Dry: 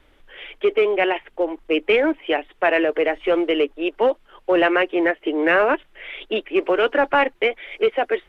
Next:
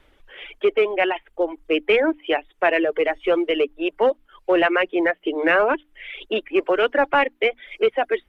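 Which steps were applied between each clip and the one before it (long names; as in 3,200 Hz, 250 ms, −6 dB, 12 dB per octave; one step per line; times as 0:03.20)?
mains-hum notches 60/120/180/240/300 Hz
reverb reduction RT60 0.78 s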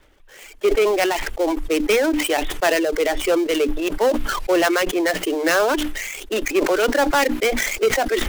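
gap after every zero crossing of 0.12 ms
level that may fall only so fast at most 33 dB per second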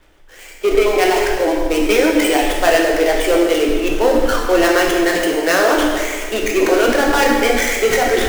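dense smooth reverb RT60 1.9 s, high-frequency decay 0.8×, DRR −1.5 dB
level +1 dB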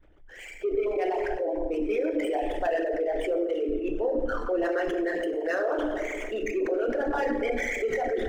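spectral envelope exaggerated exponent 2
downward compressor 1.5 to 1, threshold −34 dBFS, peak gain reduction 9.5 dB
level −5 dB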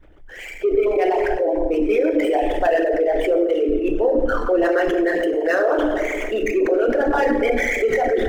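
running median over 5 samples
level +9 dB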